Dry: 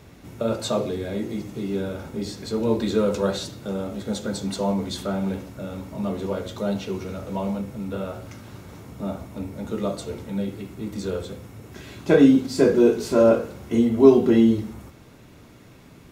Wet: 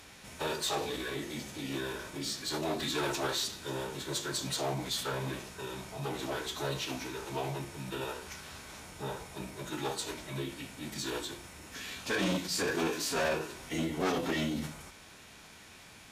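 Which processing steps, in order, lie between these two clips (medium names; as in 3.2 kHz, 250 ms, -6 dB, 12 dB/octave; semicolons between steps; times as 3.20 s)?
tilt shelf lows -9 dB, about 770 Hz; de-hum 56.29 Hz, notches 4; saturation -24.5 dBFS, distortion -6 dB; Chebyshev shaper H 4 -29 dB, 5 -35 dB, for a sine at -24.5 dBFS; formant-preserving pitch shift -6.5 st; trim -3 dB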